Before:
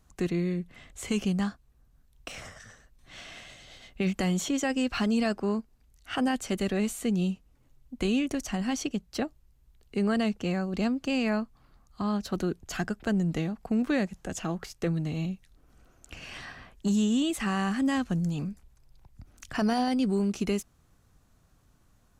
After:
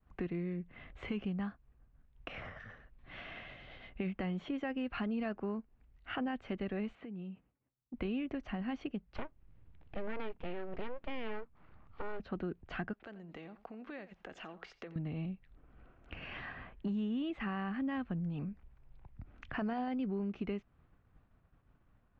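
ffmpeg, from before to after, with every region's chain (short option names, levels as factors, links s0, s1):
-filter_complex "[0:a]asettb=1/sr,asplit=3[s0][s1][s2];[s0]atrim=end=6.954[s3];[s1]atrim=start=6.95:end=7.94,asetpts=PTS-STARTPTS,afade=t=in:d=0.004:c=qsin,afade=t=out:st=0.986:d=0.004:c=qsin,highpass=110,lowpass=3400,acompressor=threshold=0.0112:ratio=16:attack=3.2:release=140:knee=1:detection=peak[s4];[s2]atrim=start=7.936[s5];[s3][s4]acrossfade=d=0.004:c1=hsin:c2=qsin[s6];[s6][s5]acrossfade=d=0.004:c1=qsin:c2=hsin,asettb=1/sr,asplit=3[s7][s8][s9];[s7]atrim=end=9.164[s10];[s8]atrim=start=9.16:end=12.2,asetpts=PTS-STARTPTS,afade=t=in:d=0.004:c=qsin,afade=t=out:st=3.036:d=0.004:c=qsin,acompressor=mode=upward:threshold=0.00316:ratio=2.5:attack=3.2:release=140:knee=2.83:detection=peak,aeval=exprs='abs(val(0))':c=same[s11];[s9]atrim=start=12.196[s12];[s10][s11]acrossfade=d=0.004:c1=hsin:c2=qsin[s13];[s13][s12]acrossfade=d=0.004:c1=qsin:c2=hsin,asettb=1/sr,asplit=3[s14][s15][s16];[s14]atrim=end=12.934[s17];[s15]atrim=start=12.93:end=14.96,asetpts=PTS-STARTPTS,afade=t=in:d=0.004:c=qsin,afade=t=out:st=2.026:d=0.004:c=qsin,acompressor=threshold=0.00891:ratio=4:attack=3.2:release=140:knee=1:detection=peak,bass=f=250:g=-14,treble=f=4000:g=12,aecho=1:1:87:0.15,atrim=end_sample=89523[s18];[s16]atrim=start=14.956[s19];[s17][s18]acrossfade=d=0.004:c1=hsin:c2=qsin[s20];[s20][s19]acrossfade=d=0.004:c1=qsin:c2=hsin,agate=range=0.0224:threshold=0.00141:ratio=3:detection=peak,lowpass=f=2700:w=0.5412,lowpass=f=2700:w=1.3066,acompressor=threshold=0.00794:ratio=2"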